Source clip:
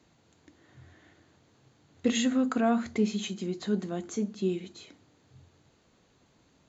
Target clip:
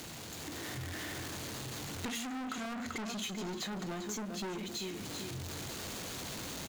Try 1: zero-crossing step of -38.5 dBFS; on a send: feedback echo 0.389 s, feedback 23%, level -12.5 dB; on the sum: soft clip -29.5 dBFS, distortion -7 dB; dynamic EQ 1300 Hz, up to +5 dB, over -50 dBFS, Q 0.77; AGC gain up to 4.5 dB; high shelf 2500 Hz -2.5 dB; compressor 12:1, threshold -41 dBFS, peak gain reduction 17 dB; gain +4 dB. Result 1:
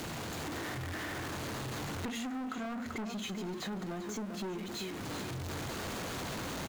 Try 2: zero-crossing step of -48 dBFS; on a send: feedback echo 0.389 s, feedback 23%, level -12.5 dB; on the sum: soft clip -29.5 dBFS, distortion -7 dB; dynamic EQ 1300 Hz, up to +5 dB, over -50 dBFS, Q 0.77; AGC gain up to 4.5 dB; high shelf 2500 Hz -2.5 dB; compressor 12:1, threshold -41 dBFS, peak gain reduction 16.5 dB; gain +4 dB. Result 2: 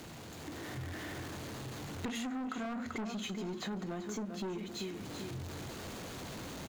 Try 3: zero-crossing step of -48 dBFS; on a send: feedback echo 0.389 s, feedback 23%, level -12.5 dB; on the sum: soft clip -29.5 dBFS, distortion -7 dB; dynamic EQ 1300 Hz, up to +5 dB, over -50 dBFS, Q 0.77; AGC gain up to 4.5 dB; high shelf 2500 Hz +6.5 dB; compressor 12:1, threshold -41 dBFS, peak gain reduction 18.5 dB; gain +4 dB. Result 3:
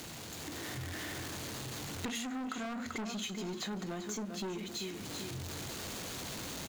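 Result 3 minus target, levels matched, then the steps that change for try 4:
soft clip: distortion -4 dB
change: soft clip -35.5 dBFS, distortion -4 dB

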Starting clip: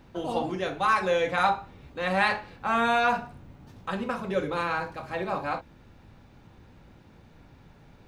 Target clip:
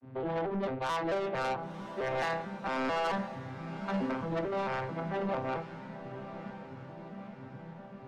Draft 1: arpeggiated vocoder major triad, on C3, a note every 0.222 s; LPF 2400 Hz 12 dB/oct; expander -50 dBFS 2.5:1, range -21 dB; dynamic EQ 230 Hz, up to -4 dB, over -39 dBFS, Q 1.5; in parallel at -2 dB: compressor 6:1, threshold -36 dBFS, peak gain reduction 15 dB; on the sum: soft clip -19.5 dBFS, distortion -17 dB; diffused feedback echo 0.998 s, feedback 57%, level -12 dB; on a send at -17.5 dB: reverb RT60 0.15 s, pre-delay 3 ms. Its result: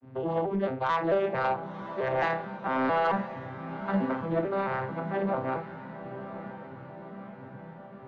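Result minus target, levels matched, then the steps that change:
soft clip: distortion -10 dB
change: soft clip -29.5 dBFS, distortion -7 dB

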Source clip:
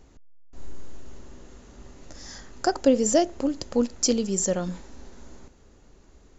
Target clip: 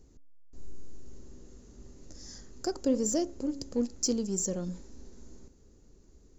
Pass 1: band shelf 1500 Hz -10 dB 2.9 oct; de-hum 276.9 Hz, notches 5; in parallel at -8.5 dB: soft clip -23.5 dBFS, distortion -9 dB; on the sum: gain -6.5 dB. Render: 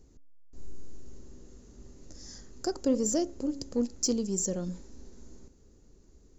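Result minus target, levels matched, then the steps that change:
soft clip: distortion -5 dB
change: soft clip -31.5 dBFS, distortion -4 dB

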